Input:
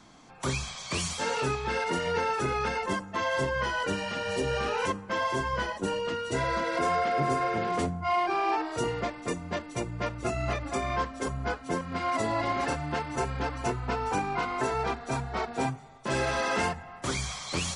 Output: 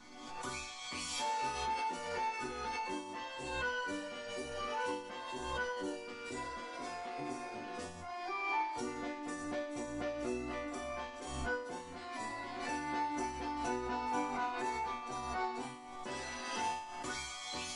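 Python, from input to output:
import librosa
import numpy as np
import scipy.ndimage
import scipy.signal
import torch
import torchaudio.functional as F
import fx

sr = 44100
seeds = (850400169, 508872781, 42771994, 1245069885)

y = fx.peak_eq(x, sr, hz=900.0, db=2.5, octaves=0.3)
y = fx.resonator_bank(y, sr, root=59, chord='minor', decay_s=0.67)
y = fx.pre_swell(y, sr, db_per_s=38.0)
y = y * 10.0 ** (12.5 / 20.0)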